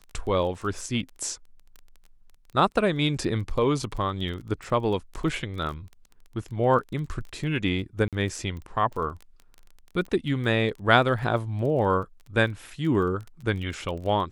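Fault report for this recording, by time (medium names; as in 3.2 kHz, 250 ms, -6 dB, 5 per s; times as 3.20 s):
crackle 17 per s -34 dBFS
8.08–8.13 s: dropout 47 ms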